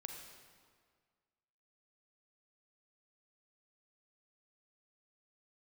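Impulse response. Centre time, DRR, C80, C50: 56 ms, 2.5 dB, 5.0 dB, 3.5 dB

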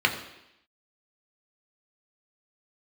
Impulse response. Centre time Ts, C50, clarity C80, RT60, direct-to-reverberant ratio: 18 ms, 9.5 dB, 11.0 dB, 0.85 s, 2.0 dB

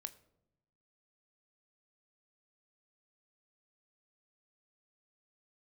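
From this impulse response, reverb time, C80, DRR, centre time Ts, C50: 0.85 s, 20.0 dB, 10.5 dB, 6 ms, 18.0 dB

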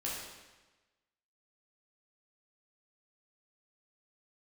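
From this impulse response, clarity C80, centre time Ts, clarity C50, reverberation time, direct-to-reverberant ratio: 3.0 dB, 76 ms, 0.0 dB, 1.2 s, −6.0 dB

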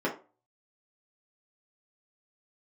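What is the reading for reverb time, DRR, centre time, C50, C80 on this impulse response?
0.35 s, −5.5 dB, 18 ms, 10.0 dB, 16.5 dB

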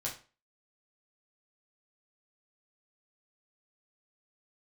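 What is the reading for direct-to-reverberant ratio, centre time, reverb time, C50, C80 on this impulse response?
−4.5 dB, 22 ms, 0.35 s, 9.0 dB, 14.5 dB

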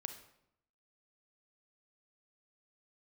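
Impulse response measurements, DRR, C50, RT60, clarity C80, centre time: 7.5 dB, 9.0 dB, 0.75 s, 12.5 dB, 14 ms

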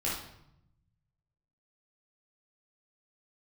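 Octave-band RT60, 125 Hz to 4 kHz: 1.8, 1.2, 0.75, 0.75, 0.65, 0.60 seconds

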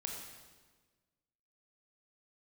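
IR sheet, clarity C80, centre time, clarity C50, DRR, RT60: 4.0 dB, 58 ms, 2.5 dB, 0.0 dB, 1.4 s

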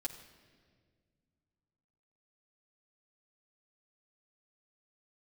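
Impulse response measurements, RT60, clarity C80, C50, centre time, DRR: non-exponential decay, 11.0 dB, 10.0 dB, 19 ms, −3.0 dB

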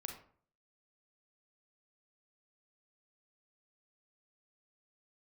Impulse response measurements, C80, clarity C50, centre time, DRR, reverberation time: 10.5 dB, 6.0 dB, 25 ms, 2.5 dB, 0.50 s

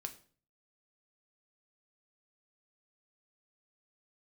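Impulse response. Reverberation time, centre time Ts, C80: 0.45 s, 7 ms, 18.5 dB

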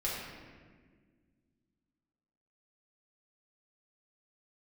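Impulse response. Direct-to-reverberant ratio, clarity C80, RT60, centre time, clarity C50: −7.0 dB, 2.0 dB, 1.6 s, 90 ms, −0.5 dB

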